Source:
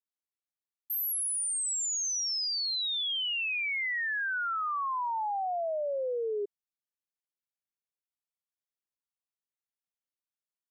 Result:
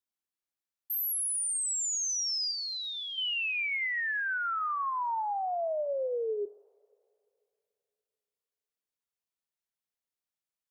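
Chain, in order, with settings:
0:02.51–0:03.18: first difference
coupled-rooms reverb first 0.67 s, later 2.8 s, from −18 dB, DRR 16.5 dB

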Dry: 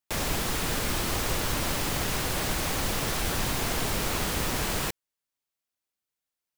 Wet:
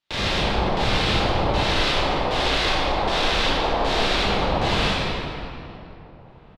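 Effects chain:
0:01.66–0:04.16: parametric band 120 Hz −13.5 dB 1.3 octaves
brickwall limiter −26 dBFS, peak gain reduction 10.5 dB
auto-filter low-pass square 1.3 Hz 820–3,700 Hz
slap from a distant wall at 280 metres, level −26 dB
convolution reverb RT60 2.8 s, pre-delay 15 ms, DRR −8.5 dB
level +5 dB

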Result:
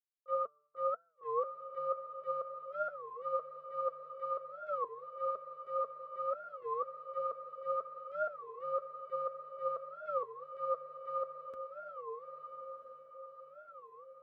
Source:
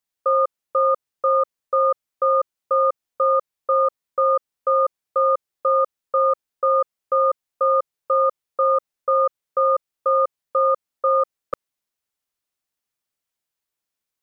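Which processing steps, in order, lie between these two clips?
noise gate −14 dBFS, range −40 dB
high-pass filter 48 Hz 24 dB per octave
hum removal 147.6 Hz, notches 10
reverb reduction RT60 0.85 s
transient designer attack −10 dB, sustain +7 dB
downward compressor 3 to 1, threshold −43 dBFS, peak gain reduction 7.5 dB
flanger 1.9 Hz, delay 3.8 ms, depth 2.6 ms, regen +54%
feedback delay with all-pass diffusion 1,247 ms, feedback 50%, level −6.5 dB
wow of a warped record 33 1/3 rpm, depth 250 cents
level +14 dB

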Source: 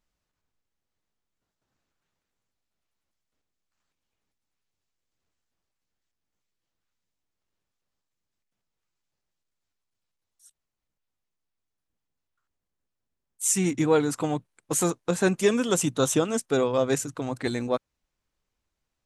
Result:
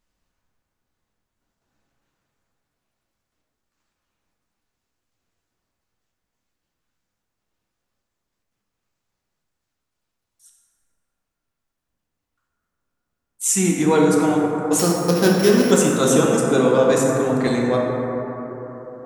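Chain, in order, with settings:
0:14.79–0:15.71: samples sorted by size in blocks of 8 samples
dense smooth reverb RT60 4.2 s, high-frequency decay 0.25×, DRR −2.5 dB
level +3.5 dB

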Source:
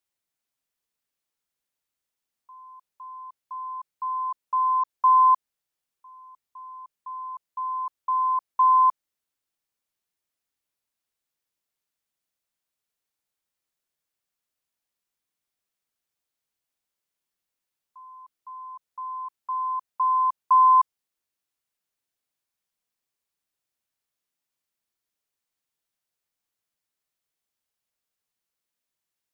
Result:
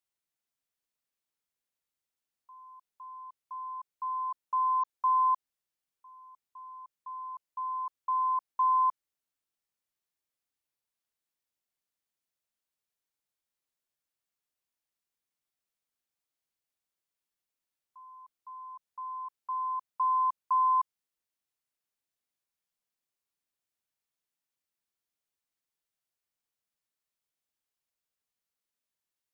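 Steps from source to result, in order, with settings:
brickwall limiter −16.5 dBFS, peak gain reduction 4 dB
level −5 dB

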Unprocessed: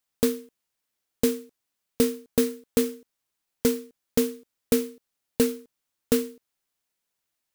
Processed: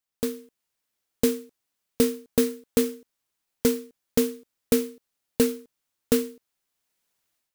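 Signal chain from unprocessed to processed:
automatic gain control gain up to 11.5 dB
level −6 dB

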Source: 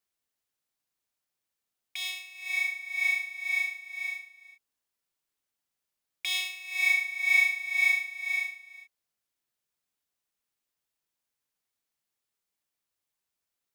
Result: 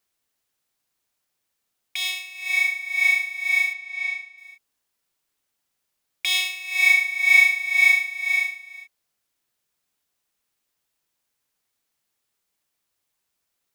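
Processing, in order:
0:03.73–0:04.38: high-frequency loss of the air 69 metres
level +8 dB

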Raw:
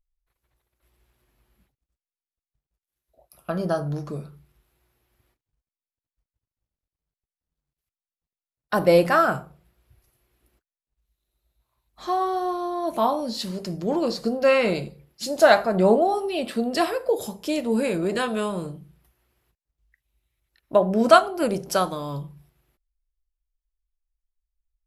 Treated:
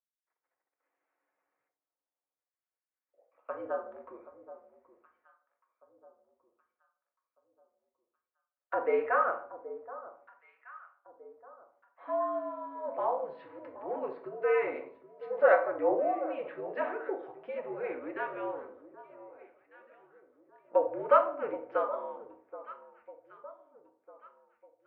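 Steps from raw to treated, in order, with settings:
delay that swaps between a low-pass and a high-pass 775 ms, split 1,200 Hz, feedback 56%, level −14 dB
rectangular room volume 590 cubic metres, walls furnished, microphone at 1.2 metres
single-sideband voice off tune −75 Hz 520–2,200 Hz
level −8 dB

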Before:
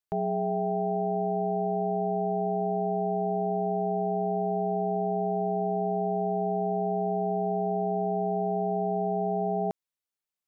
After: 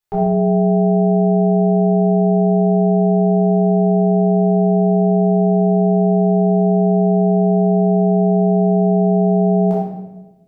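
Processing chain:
rectangular room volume 480 cubic metres, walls mixed, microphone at 4 metres
level +2 dB

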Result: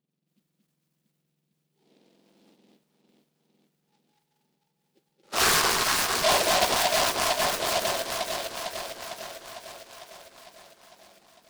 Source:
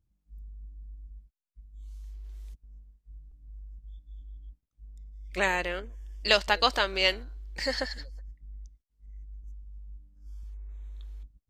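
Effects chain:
frequency axis turned over on the octave scale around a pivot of 1,700 Hz
0:05.23–0:06.65: mid-hump overdrive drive 24 dB, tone 1,600 Hz, clips at −8 dBFS
delay that swaps between a low-pass and a high-pass 226 ms, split 1,400 Hz, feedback 80%, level −2 dB
brickwall limiter −15.5 dBFS, peak gain reduction 8 dB
short delay modulated by noise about 3,200 Hz, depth 0.13 ms
level +1 dB

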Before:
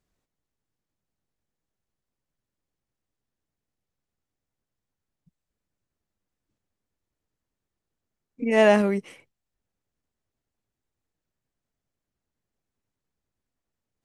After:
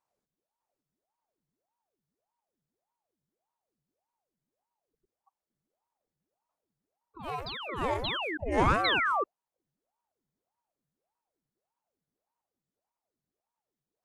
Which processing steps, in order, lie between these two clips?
parametric band 2,500 Hz −13.5 dB 0.28 octaves
sound drawn into the spectrogram fall, 0:08.84–0:09.24, 750–3,300 Hz −20 dBFS
delay with pitch and tempo change per echo 605 ms, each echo +3 semitones, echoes 2, each echo −6 dB
ring modulator whose carrier an LFO sweeps 550 Hz, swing 75%, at 1.7 Hz
level −4.5 dB

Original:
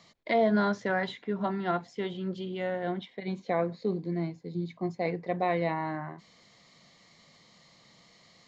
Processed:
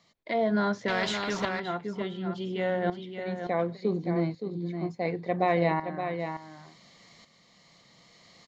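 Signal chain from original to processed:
shaped tremolo saw up 0.69 Hz, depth 75%
single-tap delay 570 ms −7.5 dB
0:00.88–0:01.60: every bin compressed towards the loudest bin 2 to 1
level +4.5 dB

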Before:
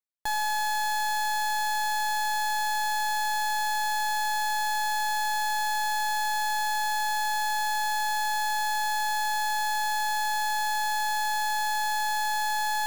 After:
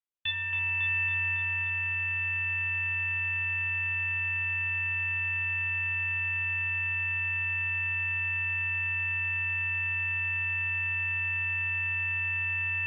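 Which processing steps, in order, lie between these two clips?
feedback echo with a band-pass in the loop 276 ms, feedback 55%, band-pass 840 Hz, level −4 dB
harmonic generator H 3 −15 dB, 4 −36 dB, 5 −31 dB, 8 −25 dB, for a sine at −21 dBFS
rectangular room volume 200 cubic metres, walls furnished, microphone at 0.7 metres
voice inversion scrambler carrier 3,500 Hz

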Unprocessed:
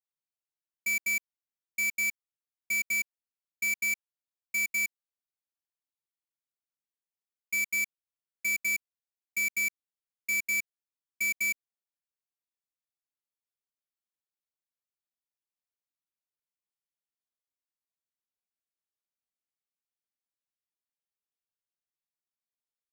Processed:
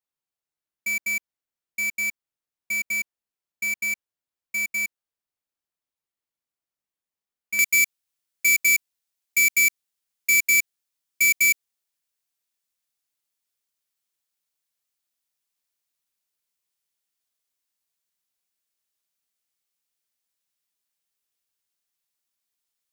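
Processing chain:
high-shelf EQ 2,100 Hz −3.5 dB, from 0:07.59 +8.5 dB
level +5 dB

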